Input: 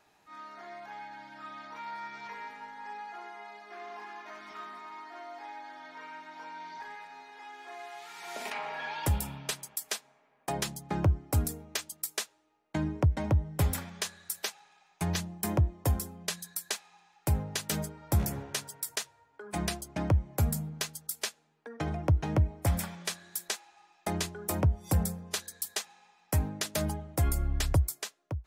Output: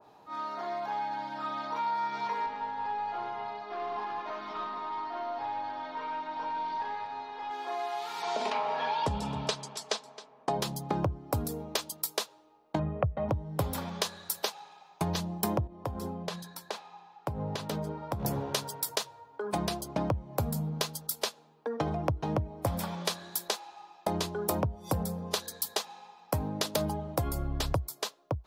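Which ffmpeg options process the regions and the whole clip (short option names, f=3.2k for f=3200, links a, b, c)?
-filter_complex "[0:a]asettb=1/sr,asplit=3[a][b][c];[a]atrim=end=2.464[d];[b]atrim=start=2.46:end=7.51,asetpts=PTS-STARTPTS,afade=t=in:d=0.004:c=qsin,afade=t=out:st=5.046:d=0.004:c=qsin,aeval=exprs='(tanh(79.4*val(0)+0.4)-tanh(0.4))/79.4':c=same,lowpass=4.6k[e];[c]atrim=start=7.506[f];[d][e]acrossfade=d=0.004:c1=hsin:c2=qsin[g];[g][f]acrossfade=d=0.004:c1=qsin:c2=hsin,asettb=1/sr,asplit=3[h][i][j];[h]atrim=end=8.224[k];[i]atrim=start=8.22:end=10.6,asetpts=PTS-STARTPTS,afade=t=in:d=0.004:c=qsin,afade=t=out:st=2.376:d=0.004:c=qsin,lowpass=f=7.6k:w=0.5412,lowpass=f=7.6k:w=1.3066,aecho=1:1:4.6:0.35,atrim=end_sample=104958,aecho=1:1:266:0.0944,atrim=end_sample=104958[l];[j]atrim=start=10.596[m];[k][l]acrossfade=d=0.004:c1=hsin:c2=qsin[n];[n][m]acrossfade=d=0.004:c1=qsin:c2=hsin,asettb=1/sr,asplit=3[o][p][q];[o]atrim=end=12.794[r];[p]atrim=start=12.79:end=13.29,asetpts=PTS-STARTPTS,afade=t=in:d=0.004:c=qsin,afade=t=out:st=0.496:d=0.004:c=qsin,lowpass=f=2.5k:w=0.5412,lowpass=f=2.5k:w=1.3066,aecho=1:1:1.6:0.71,atrim=end_sample=22050[s];[q]atrim=start=13.286[t];[r][s]acrossfade=d=0.004:c1=hsin:c2=qsin[u];[u][t]acrossfade=d=0.004:c1=qsin:c2=hsin,asettb=1/sr,asplit=3[v][w][x];[v]atrim=end=15.674[y];[w]atrim=start=15.67:end=18.25,asetpts=PTS-STARTPTS,afade=t=in:d=0.004:c=qsin,afade=t=out:st=2.576:d=0.004:c=qsin,lowpass=f=2.5k:p=1,acompressor=threshold=-38dB:ratio=5:attack=3.2:release=140:knee=1:detection=peak[z];[x]atrim=start=18.246[aa];[y][z]acrossfade=d=0.004:c1=hsin:c2=qsin[ab];[ab][aa]acrossfade=d=0.004:c1=qsin:c2=hsin,equalizer=f=125:t=o:w=1:g=8,equalizer=f=250:t=o:w=1:g=6,equalizer=f=500:t=o:w=1:g=10,equalizer=f=1k:t=o:w=1:g=11,equalizer=f=2k:t=o:w=1:g=-6,equalizer=f=4k:t=o:w=1:g=5,equalizer=f=8k:t=o:w=1:g=-6,acompressor=threshold=-29dB:ratio=4,adynamicequalizer=threshold=0.00355:dfrequency=1600:dqfactor=0.7:tfrequency=1600:tqfactor=0.7:attack=5:release=100:ratio=0.375:range=3:mode=boostabove:tftype=highshelf"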